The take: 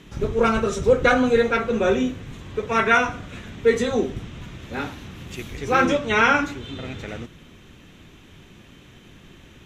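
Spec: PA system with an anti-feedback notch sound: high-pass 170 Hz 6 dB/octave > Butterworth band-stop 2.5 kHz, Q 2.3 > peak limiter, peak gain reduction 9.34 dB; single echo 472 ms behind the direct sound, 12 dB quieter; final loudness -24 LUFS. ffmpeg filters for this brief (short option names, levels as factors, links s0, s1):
-af "highpass=f=170:p=1,asuperstop=centerf=2500:order=8:qfactor=2.3,aecho=1:1:472:0.251,volume=1.26,alimiter=limit=0.224:level=0:latency=1"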